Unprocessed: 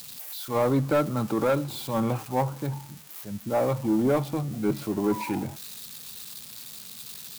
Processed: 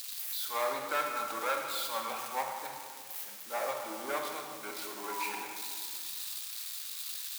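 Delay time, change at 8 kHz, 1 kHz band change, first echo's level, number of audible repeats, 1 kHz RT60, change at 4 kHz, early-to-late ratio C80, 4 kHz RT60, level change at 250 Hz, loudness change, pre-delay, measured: none, +1.0 dB, -3.0 dB, none, none, 2.0 s, +1.5 dB, 4.5 dB, 1.4 s, -23.0 dB, -8.0 dB, 25 ms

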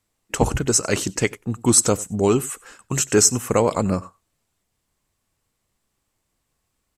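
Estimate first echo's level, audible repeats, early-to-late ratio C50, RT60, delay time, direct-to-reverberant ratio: -22.5 dB, 1, none, none, 93 ms, none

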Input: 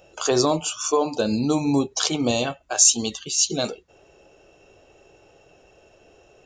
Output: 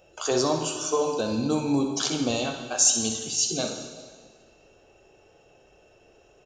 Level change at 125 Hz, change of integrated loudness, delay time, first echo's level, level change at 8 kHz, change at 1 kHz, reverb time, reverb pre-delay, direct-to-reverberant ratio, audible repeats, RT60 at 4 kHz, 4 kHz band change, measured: -3.5 dB, -3.5 dB, 63 ms, -10.0 dB, -3.5 dB, -3.5 dB, 1.7 s, 6 ms, 3.5 dB, 1, 1.6 s, -3.5 dB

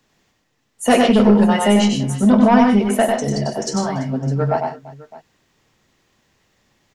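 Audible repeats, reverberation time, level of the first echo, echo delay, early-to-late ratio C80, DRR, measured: 4, none, -4.0 dB, 96 ms, none, none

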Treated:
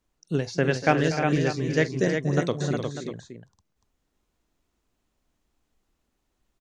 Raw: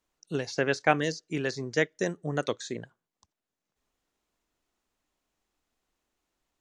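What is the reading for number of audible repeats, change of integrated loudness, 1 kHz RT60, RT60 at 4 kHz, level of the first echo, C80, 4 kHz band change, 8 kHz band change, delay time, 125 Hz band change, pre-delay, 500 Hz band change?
5, +5.0 dB, none, none, -17.0 dB, none, +2.0 dB, +2.0 dB, 44 ms, +10.5 dB, none, +4.5 dB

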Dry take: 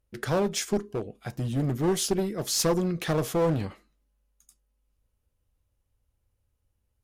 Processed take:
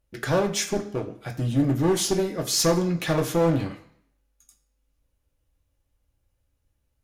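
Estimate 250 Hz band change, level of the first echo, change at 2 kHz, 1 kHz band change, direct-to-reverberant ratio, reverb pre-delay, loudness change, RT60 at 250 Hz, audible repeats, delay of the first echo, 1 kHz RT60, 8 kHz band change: +4.0 dB, none, +4.5 dB, +3.0 dB, 1.0 dB, 3 ms, +3.0 dB, 0.60 s, none, none, 0.65 s, +3.0 dB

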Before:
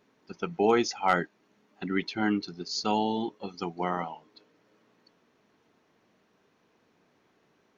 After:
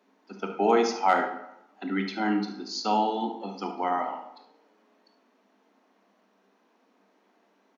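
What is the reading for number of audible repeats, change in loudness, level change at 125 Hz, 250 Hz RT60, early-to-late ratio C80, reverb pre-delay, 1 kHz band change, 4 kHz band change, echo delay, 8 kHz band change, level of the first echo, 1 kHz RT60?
1, +2.0 dB, n/a, 0.75 s, 10.0 dB, 19 ms, +4.5 dB, -1.0 dB, 71 ms, n/a, -11.5 dB, 0.85 s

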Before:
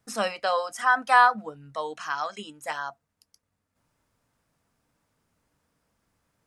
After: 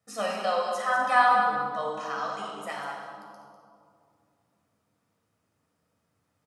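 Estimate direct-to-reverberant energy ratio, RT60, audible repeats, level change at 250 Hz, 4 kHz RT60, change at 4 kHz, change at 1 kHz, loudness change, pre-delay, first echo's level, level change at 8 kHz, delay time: -3.0 dB, 2.5 s, 1, -0.5 dB, 1.4 s, -2.5 dB, -0.5 dB, -1.5 dB, 11 ms, -9.0 dB, -3.5 dB, 0.198 s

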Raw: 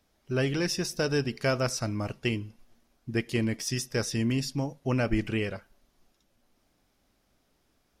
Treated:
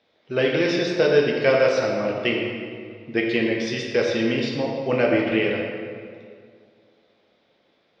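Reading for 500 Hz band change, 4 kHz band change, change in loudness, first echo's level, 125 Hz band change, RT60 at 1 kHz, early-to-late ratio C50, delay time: +12.0 dB, +5.5 dB, +7.5 dB, none, -2.0 dB, 2.1 s, 1.5 dB, none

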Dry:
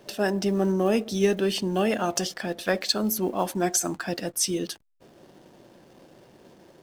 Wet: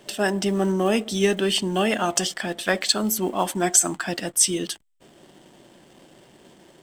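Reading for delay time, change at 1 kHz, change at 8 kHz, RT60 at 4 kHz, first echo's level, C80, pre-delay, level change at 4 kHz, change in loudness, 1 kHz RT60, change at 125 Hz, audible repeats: none, +3.5 dB, +7.5 dB, none, none, none, none, +5.0 dB, +3.5 dB, none, +1.5 dB, none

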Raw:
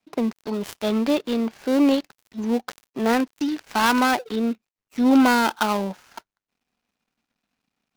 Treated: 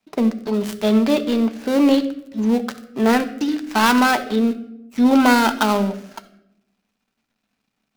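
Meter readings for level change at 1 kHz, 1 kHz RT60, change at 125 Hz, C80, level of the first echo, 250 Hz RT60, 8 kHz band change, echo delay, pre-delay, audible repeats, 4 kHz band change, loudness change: +3.0 dB, 0.75 s, n/a, 16.0 dB, none, 1.2 s, +3.5 dB, none, 5 ms, none, +3.5 dB, +4.0 dB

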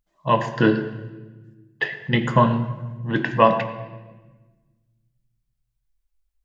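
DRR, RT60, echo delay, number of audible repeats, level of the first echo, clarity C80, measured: 7.5 dB, 1.3 s, none, none, none, 11.0 dB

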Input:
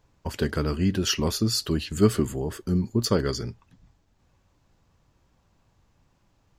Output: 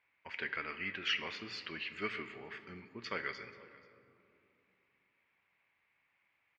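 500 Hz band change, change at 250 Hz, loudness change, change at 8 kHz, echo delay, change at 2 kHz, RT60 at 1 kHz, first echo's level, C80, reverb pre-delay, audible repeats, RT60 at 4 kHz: -19.5 dB, -24.5 dB, -14.0 dB, -28.5 dB, 0.485 s, +0.5 dB, 2.5 s, -22.0 dB, 12.0 dB, 9 ms, 1, 1.3 s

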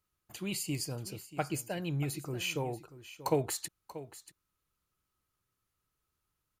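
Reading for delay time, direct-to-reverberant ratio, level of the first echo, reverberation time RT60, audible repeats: 0.635 s, none, -15.0 dB, none, 1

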